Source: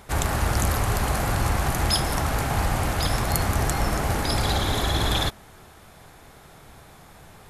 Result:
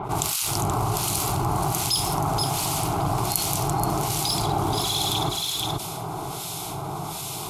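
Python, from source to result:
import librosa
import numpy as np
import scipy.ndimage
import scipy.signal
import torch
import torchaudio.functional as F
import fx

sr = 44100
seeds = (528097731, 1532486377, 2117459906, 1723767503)

p1 = scipy.signal.sosfilt(scipy.signal.butter(2, 72.0, 'highpass', fs=sr, output='sos'), x)
p2 = fx.fixed_phaser(p1, sr, hz=350.0, stages=8)
p3 = np.sign(p2) * np.maximum(np.abs(p2) - 10.0 ** (-32.0 / 20.0), 0.0)
p4 = p2 + (p3 * librosa.db_to_amplitude(-8.0))
p5 = fx.harmonic_tremolo(p4, sr, hz=1.3, depth_pct=100, crossover_hz=2000.0)
p6 = p5 + fx.echo_single(p5, sr, ms=478, db=-8.0, dry=0)
p7 = fx.env_flatten(p6, sr, amount_pct=70)
y = p7 * librosa.db_to_amplitude(-1.5)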